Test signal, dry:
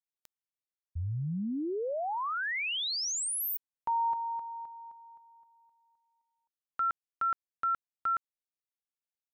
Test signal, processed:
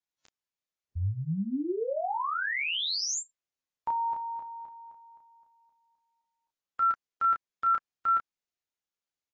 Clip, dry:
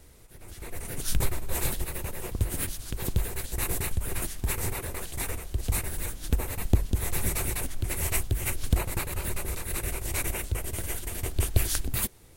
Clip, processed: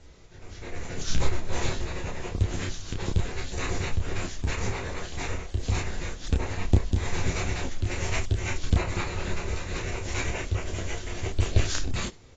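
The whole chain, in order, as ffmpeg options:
-af "aecho=1:1:11|31:0.473|0.668" -ar 16000 -c:a aac -b:a 24k

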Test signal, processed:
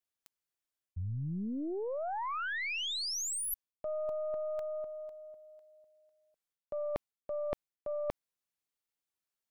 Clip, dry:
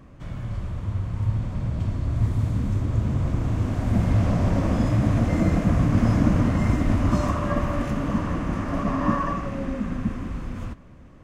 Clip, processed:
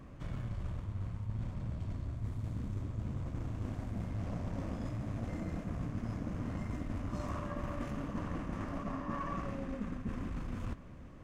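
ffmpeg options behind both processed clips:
-af "areverse,acompressor=threshold=0.0282:ratio=16,areverse,aeval=exprs='(tanh(12.6*val(0)+0.65)-tanh(0.65))/12.6':c=same"

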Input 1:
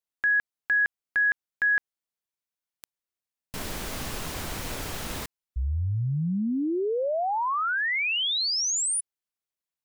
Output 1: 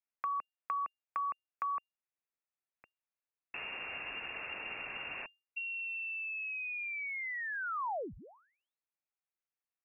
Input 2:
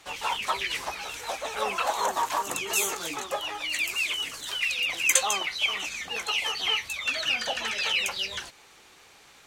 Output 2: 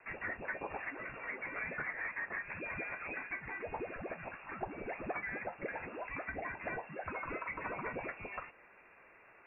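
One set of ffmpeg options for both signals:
-filter_complex "[0:a]lowpass=f=2400:t=q:w=0.5098,lowpass=f=2400:t=q:w=0.6013,lowpass=f=2400:t=q:w=0.9,lowpass=f=2400:t=q:w=2.563,afreqshift=-2800,acrossover=split=380|850[s0][s1][s2];[s0]acompressor=threshold=0.00501:ratio=4[s3];[s1]acompressor=threshold=0.0112:ratio=4[s4];[s2]acompressor=threshold=0.0141:ratio=4[s5];[s3][s4][s5]amix=inputs=3:normalize=0,volume=0.668"

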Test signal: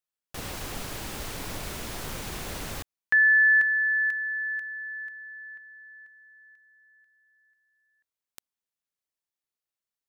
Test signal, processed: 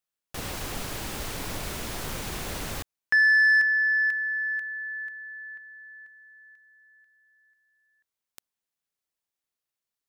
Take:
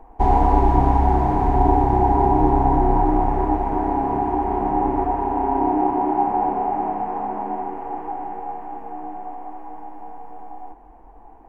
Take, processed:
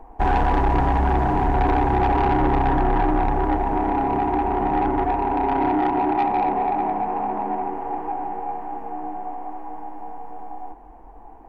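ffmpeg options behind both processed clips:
-af "asoftclip=type=tanh:threshold=0.15,volume=1.26"

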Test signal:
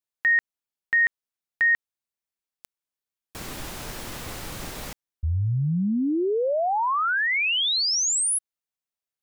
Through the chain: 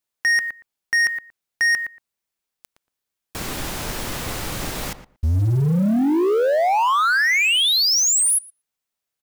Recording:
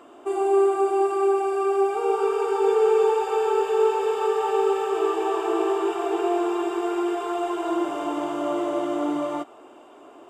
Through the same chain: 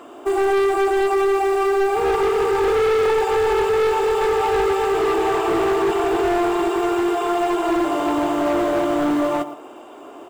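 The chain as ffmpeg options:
-filter_complex "[0:a]asplit=2[s0][s1];[s1]adelay=116,lowpass=f=1800:p=1,volume=0.251,asplit=2[s2][s3];[s3]adelay=116,lowpass=f=1800:p=1,volume=0.15[s4];[s0][s2][s4]amix=inputs=3:normalize=0,volume=15,asoftclip=hard,volume=0.0668,acrusher=bits=7:mode=log:mix=0:aa=0.000001,volume=2.37"

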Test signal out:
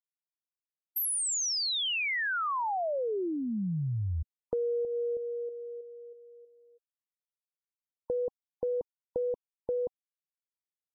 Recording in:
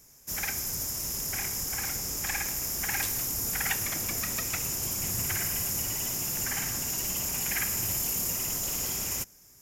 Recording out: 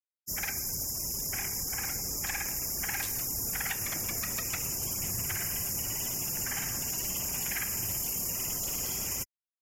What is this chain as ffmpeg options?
-af "afftfilt=real='re*gte(hypot(re,im),0.00891)':imag='im*gte(hypot(re,im),0.00891)':win_size=1024:overlap=0.75,adynamicequalizer=threshold=0.00501:dfrequency=270:dqfactor=2.1:tfrequency=270:tqfactor=2.1:attack=5:release=100:ratio=0.375:range=2.5:mode=cutabove:tftype=bell,acompressor=threshold=0.0355:ratio=6"

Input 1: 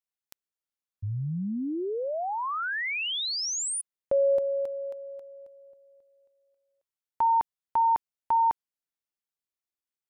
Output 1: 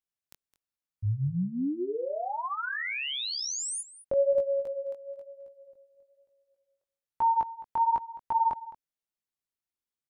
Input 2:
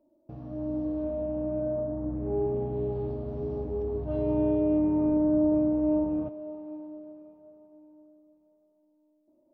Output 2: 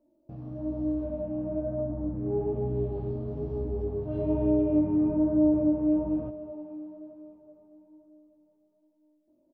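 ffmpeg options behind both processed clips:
-filter_complex "[0:a]flanger=delay=16.5:depth=6:speed=1.1,lowshelf=f=250:g=6,asplit=2[s0][s1];[s1]aecho=0:1:213:0.141[s2];[s0][s2]amix=inputs=2:normalize=0"

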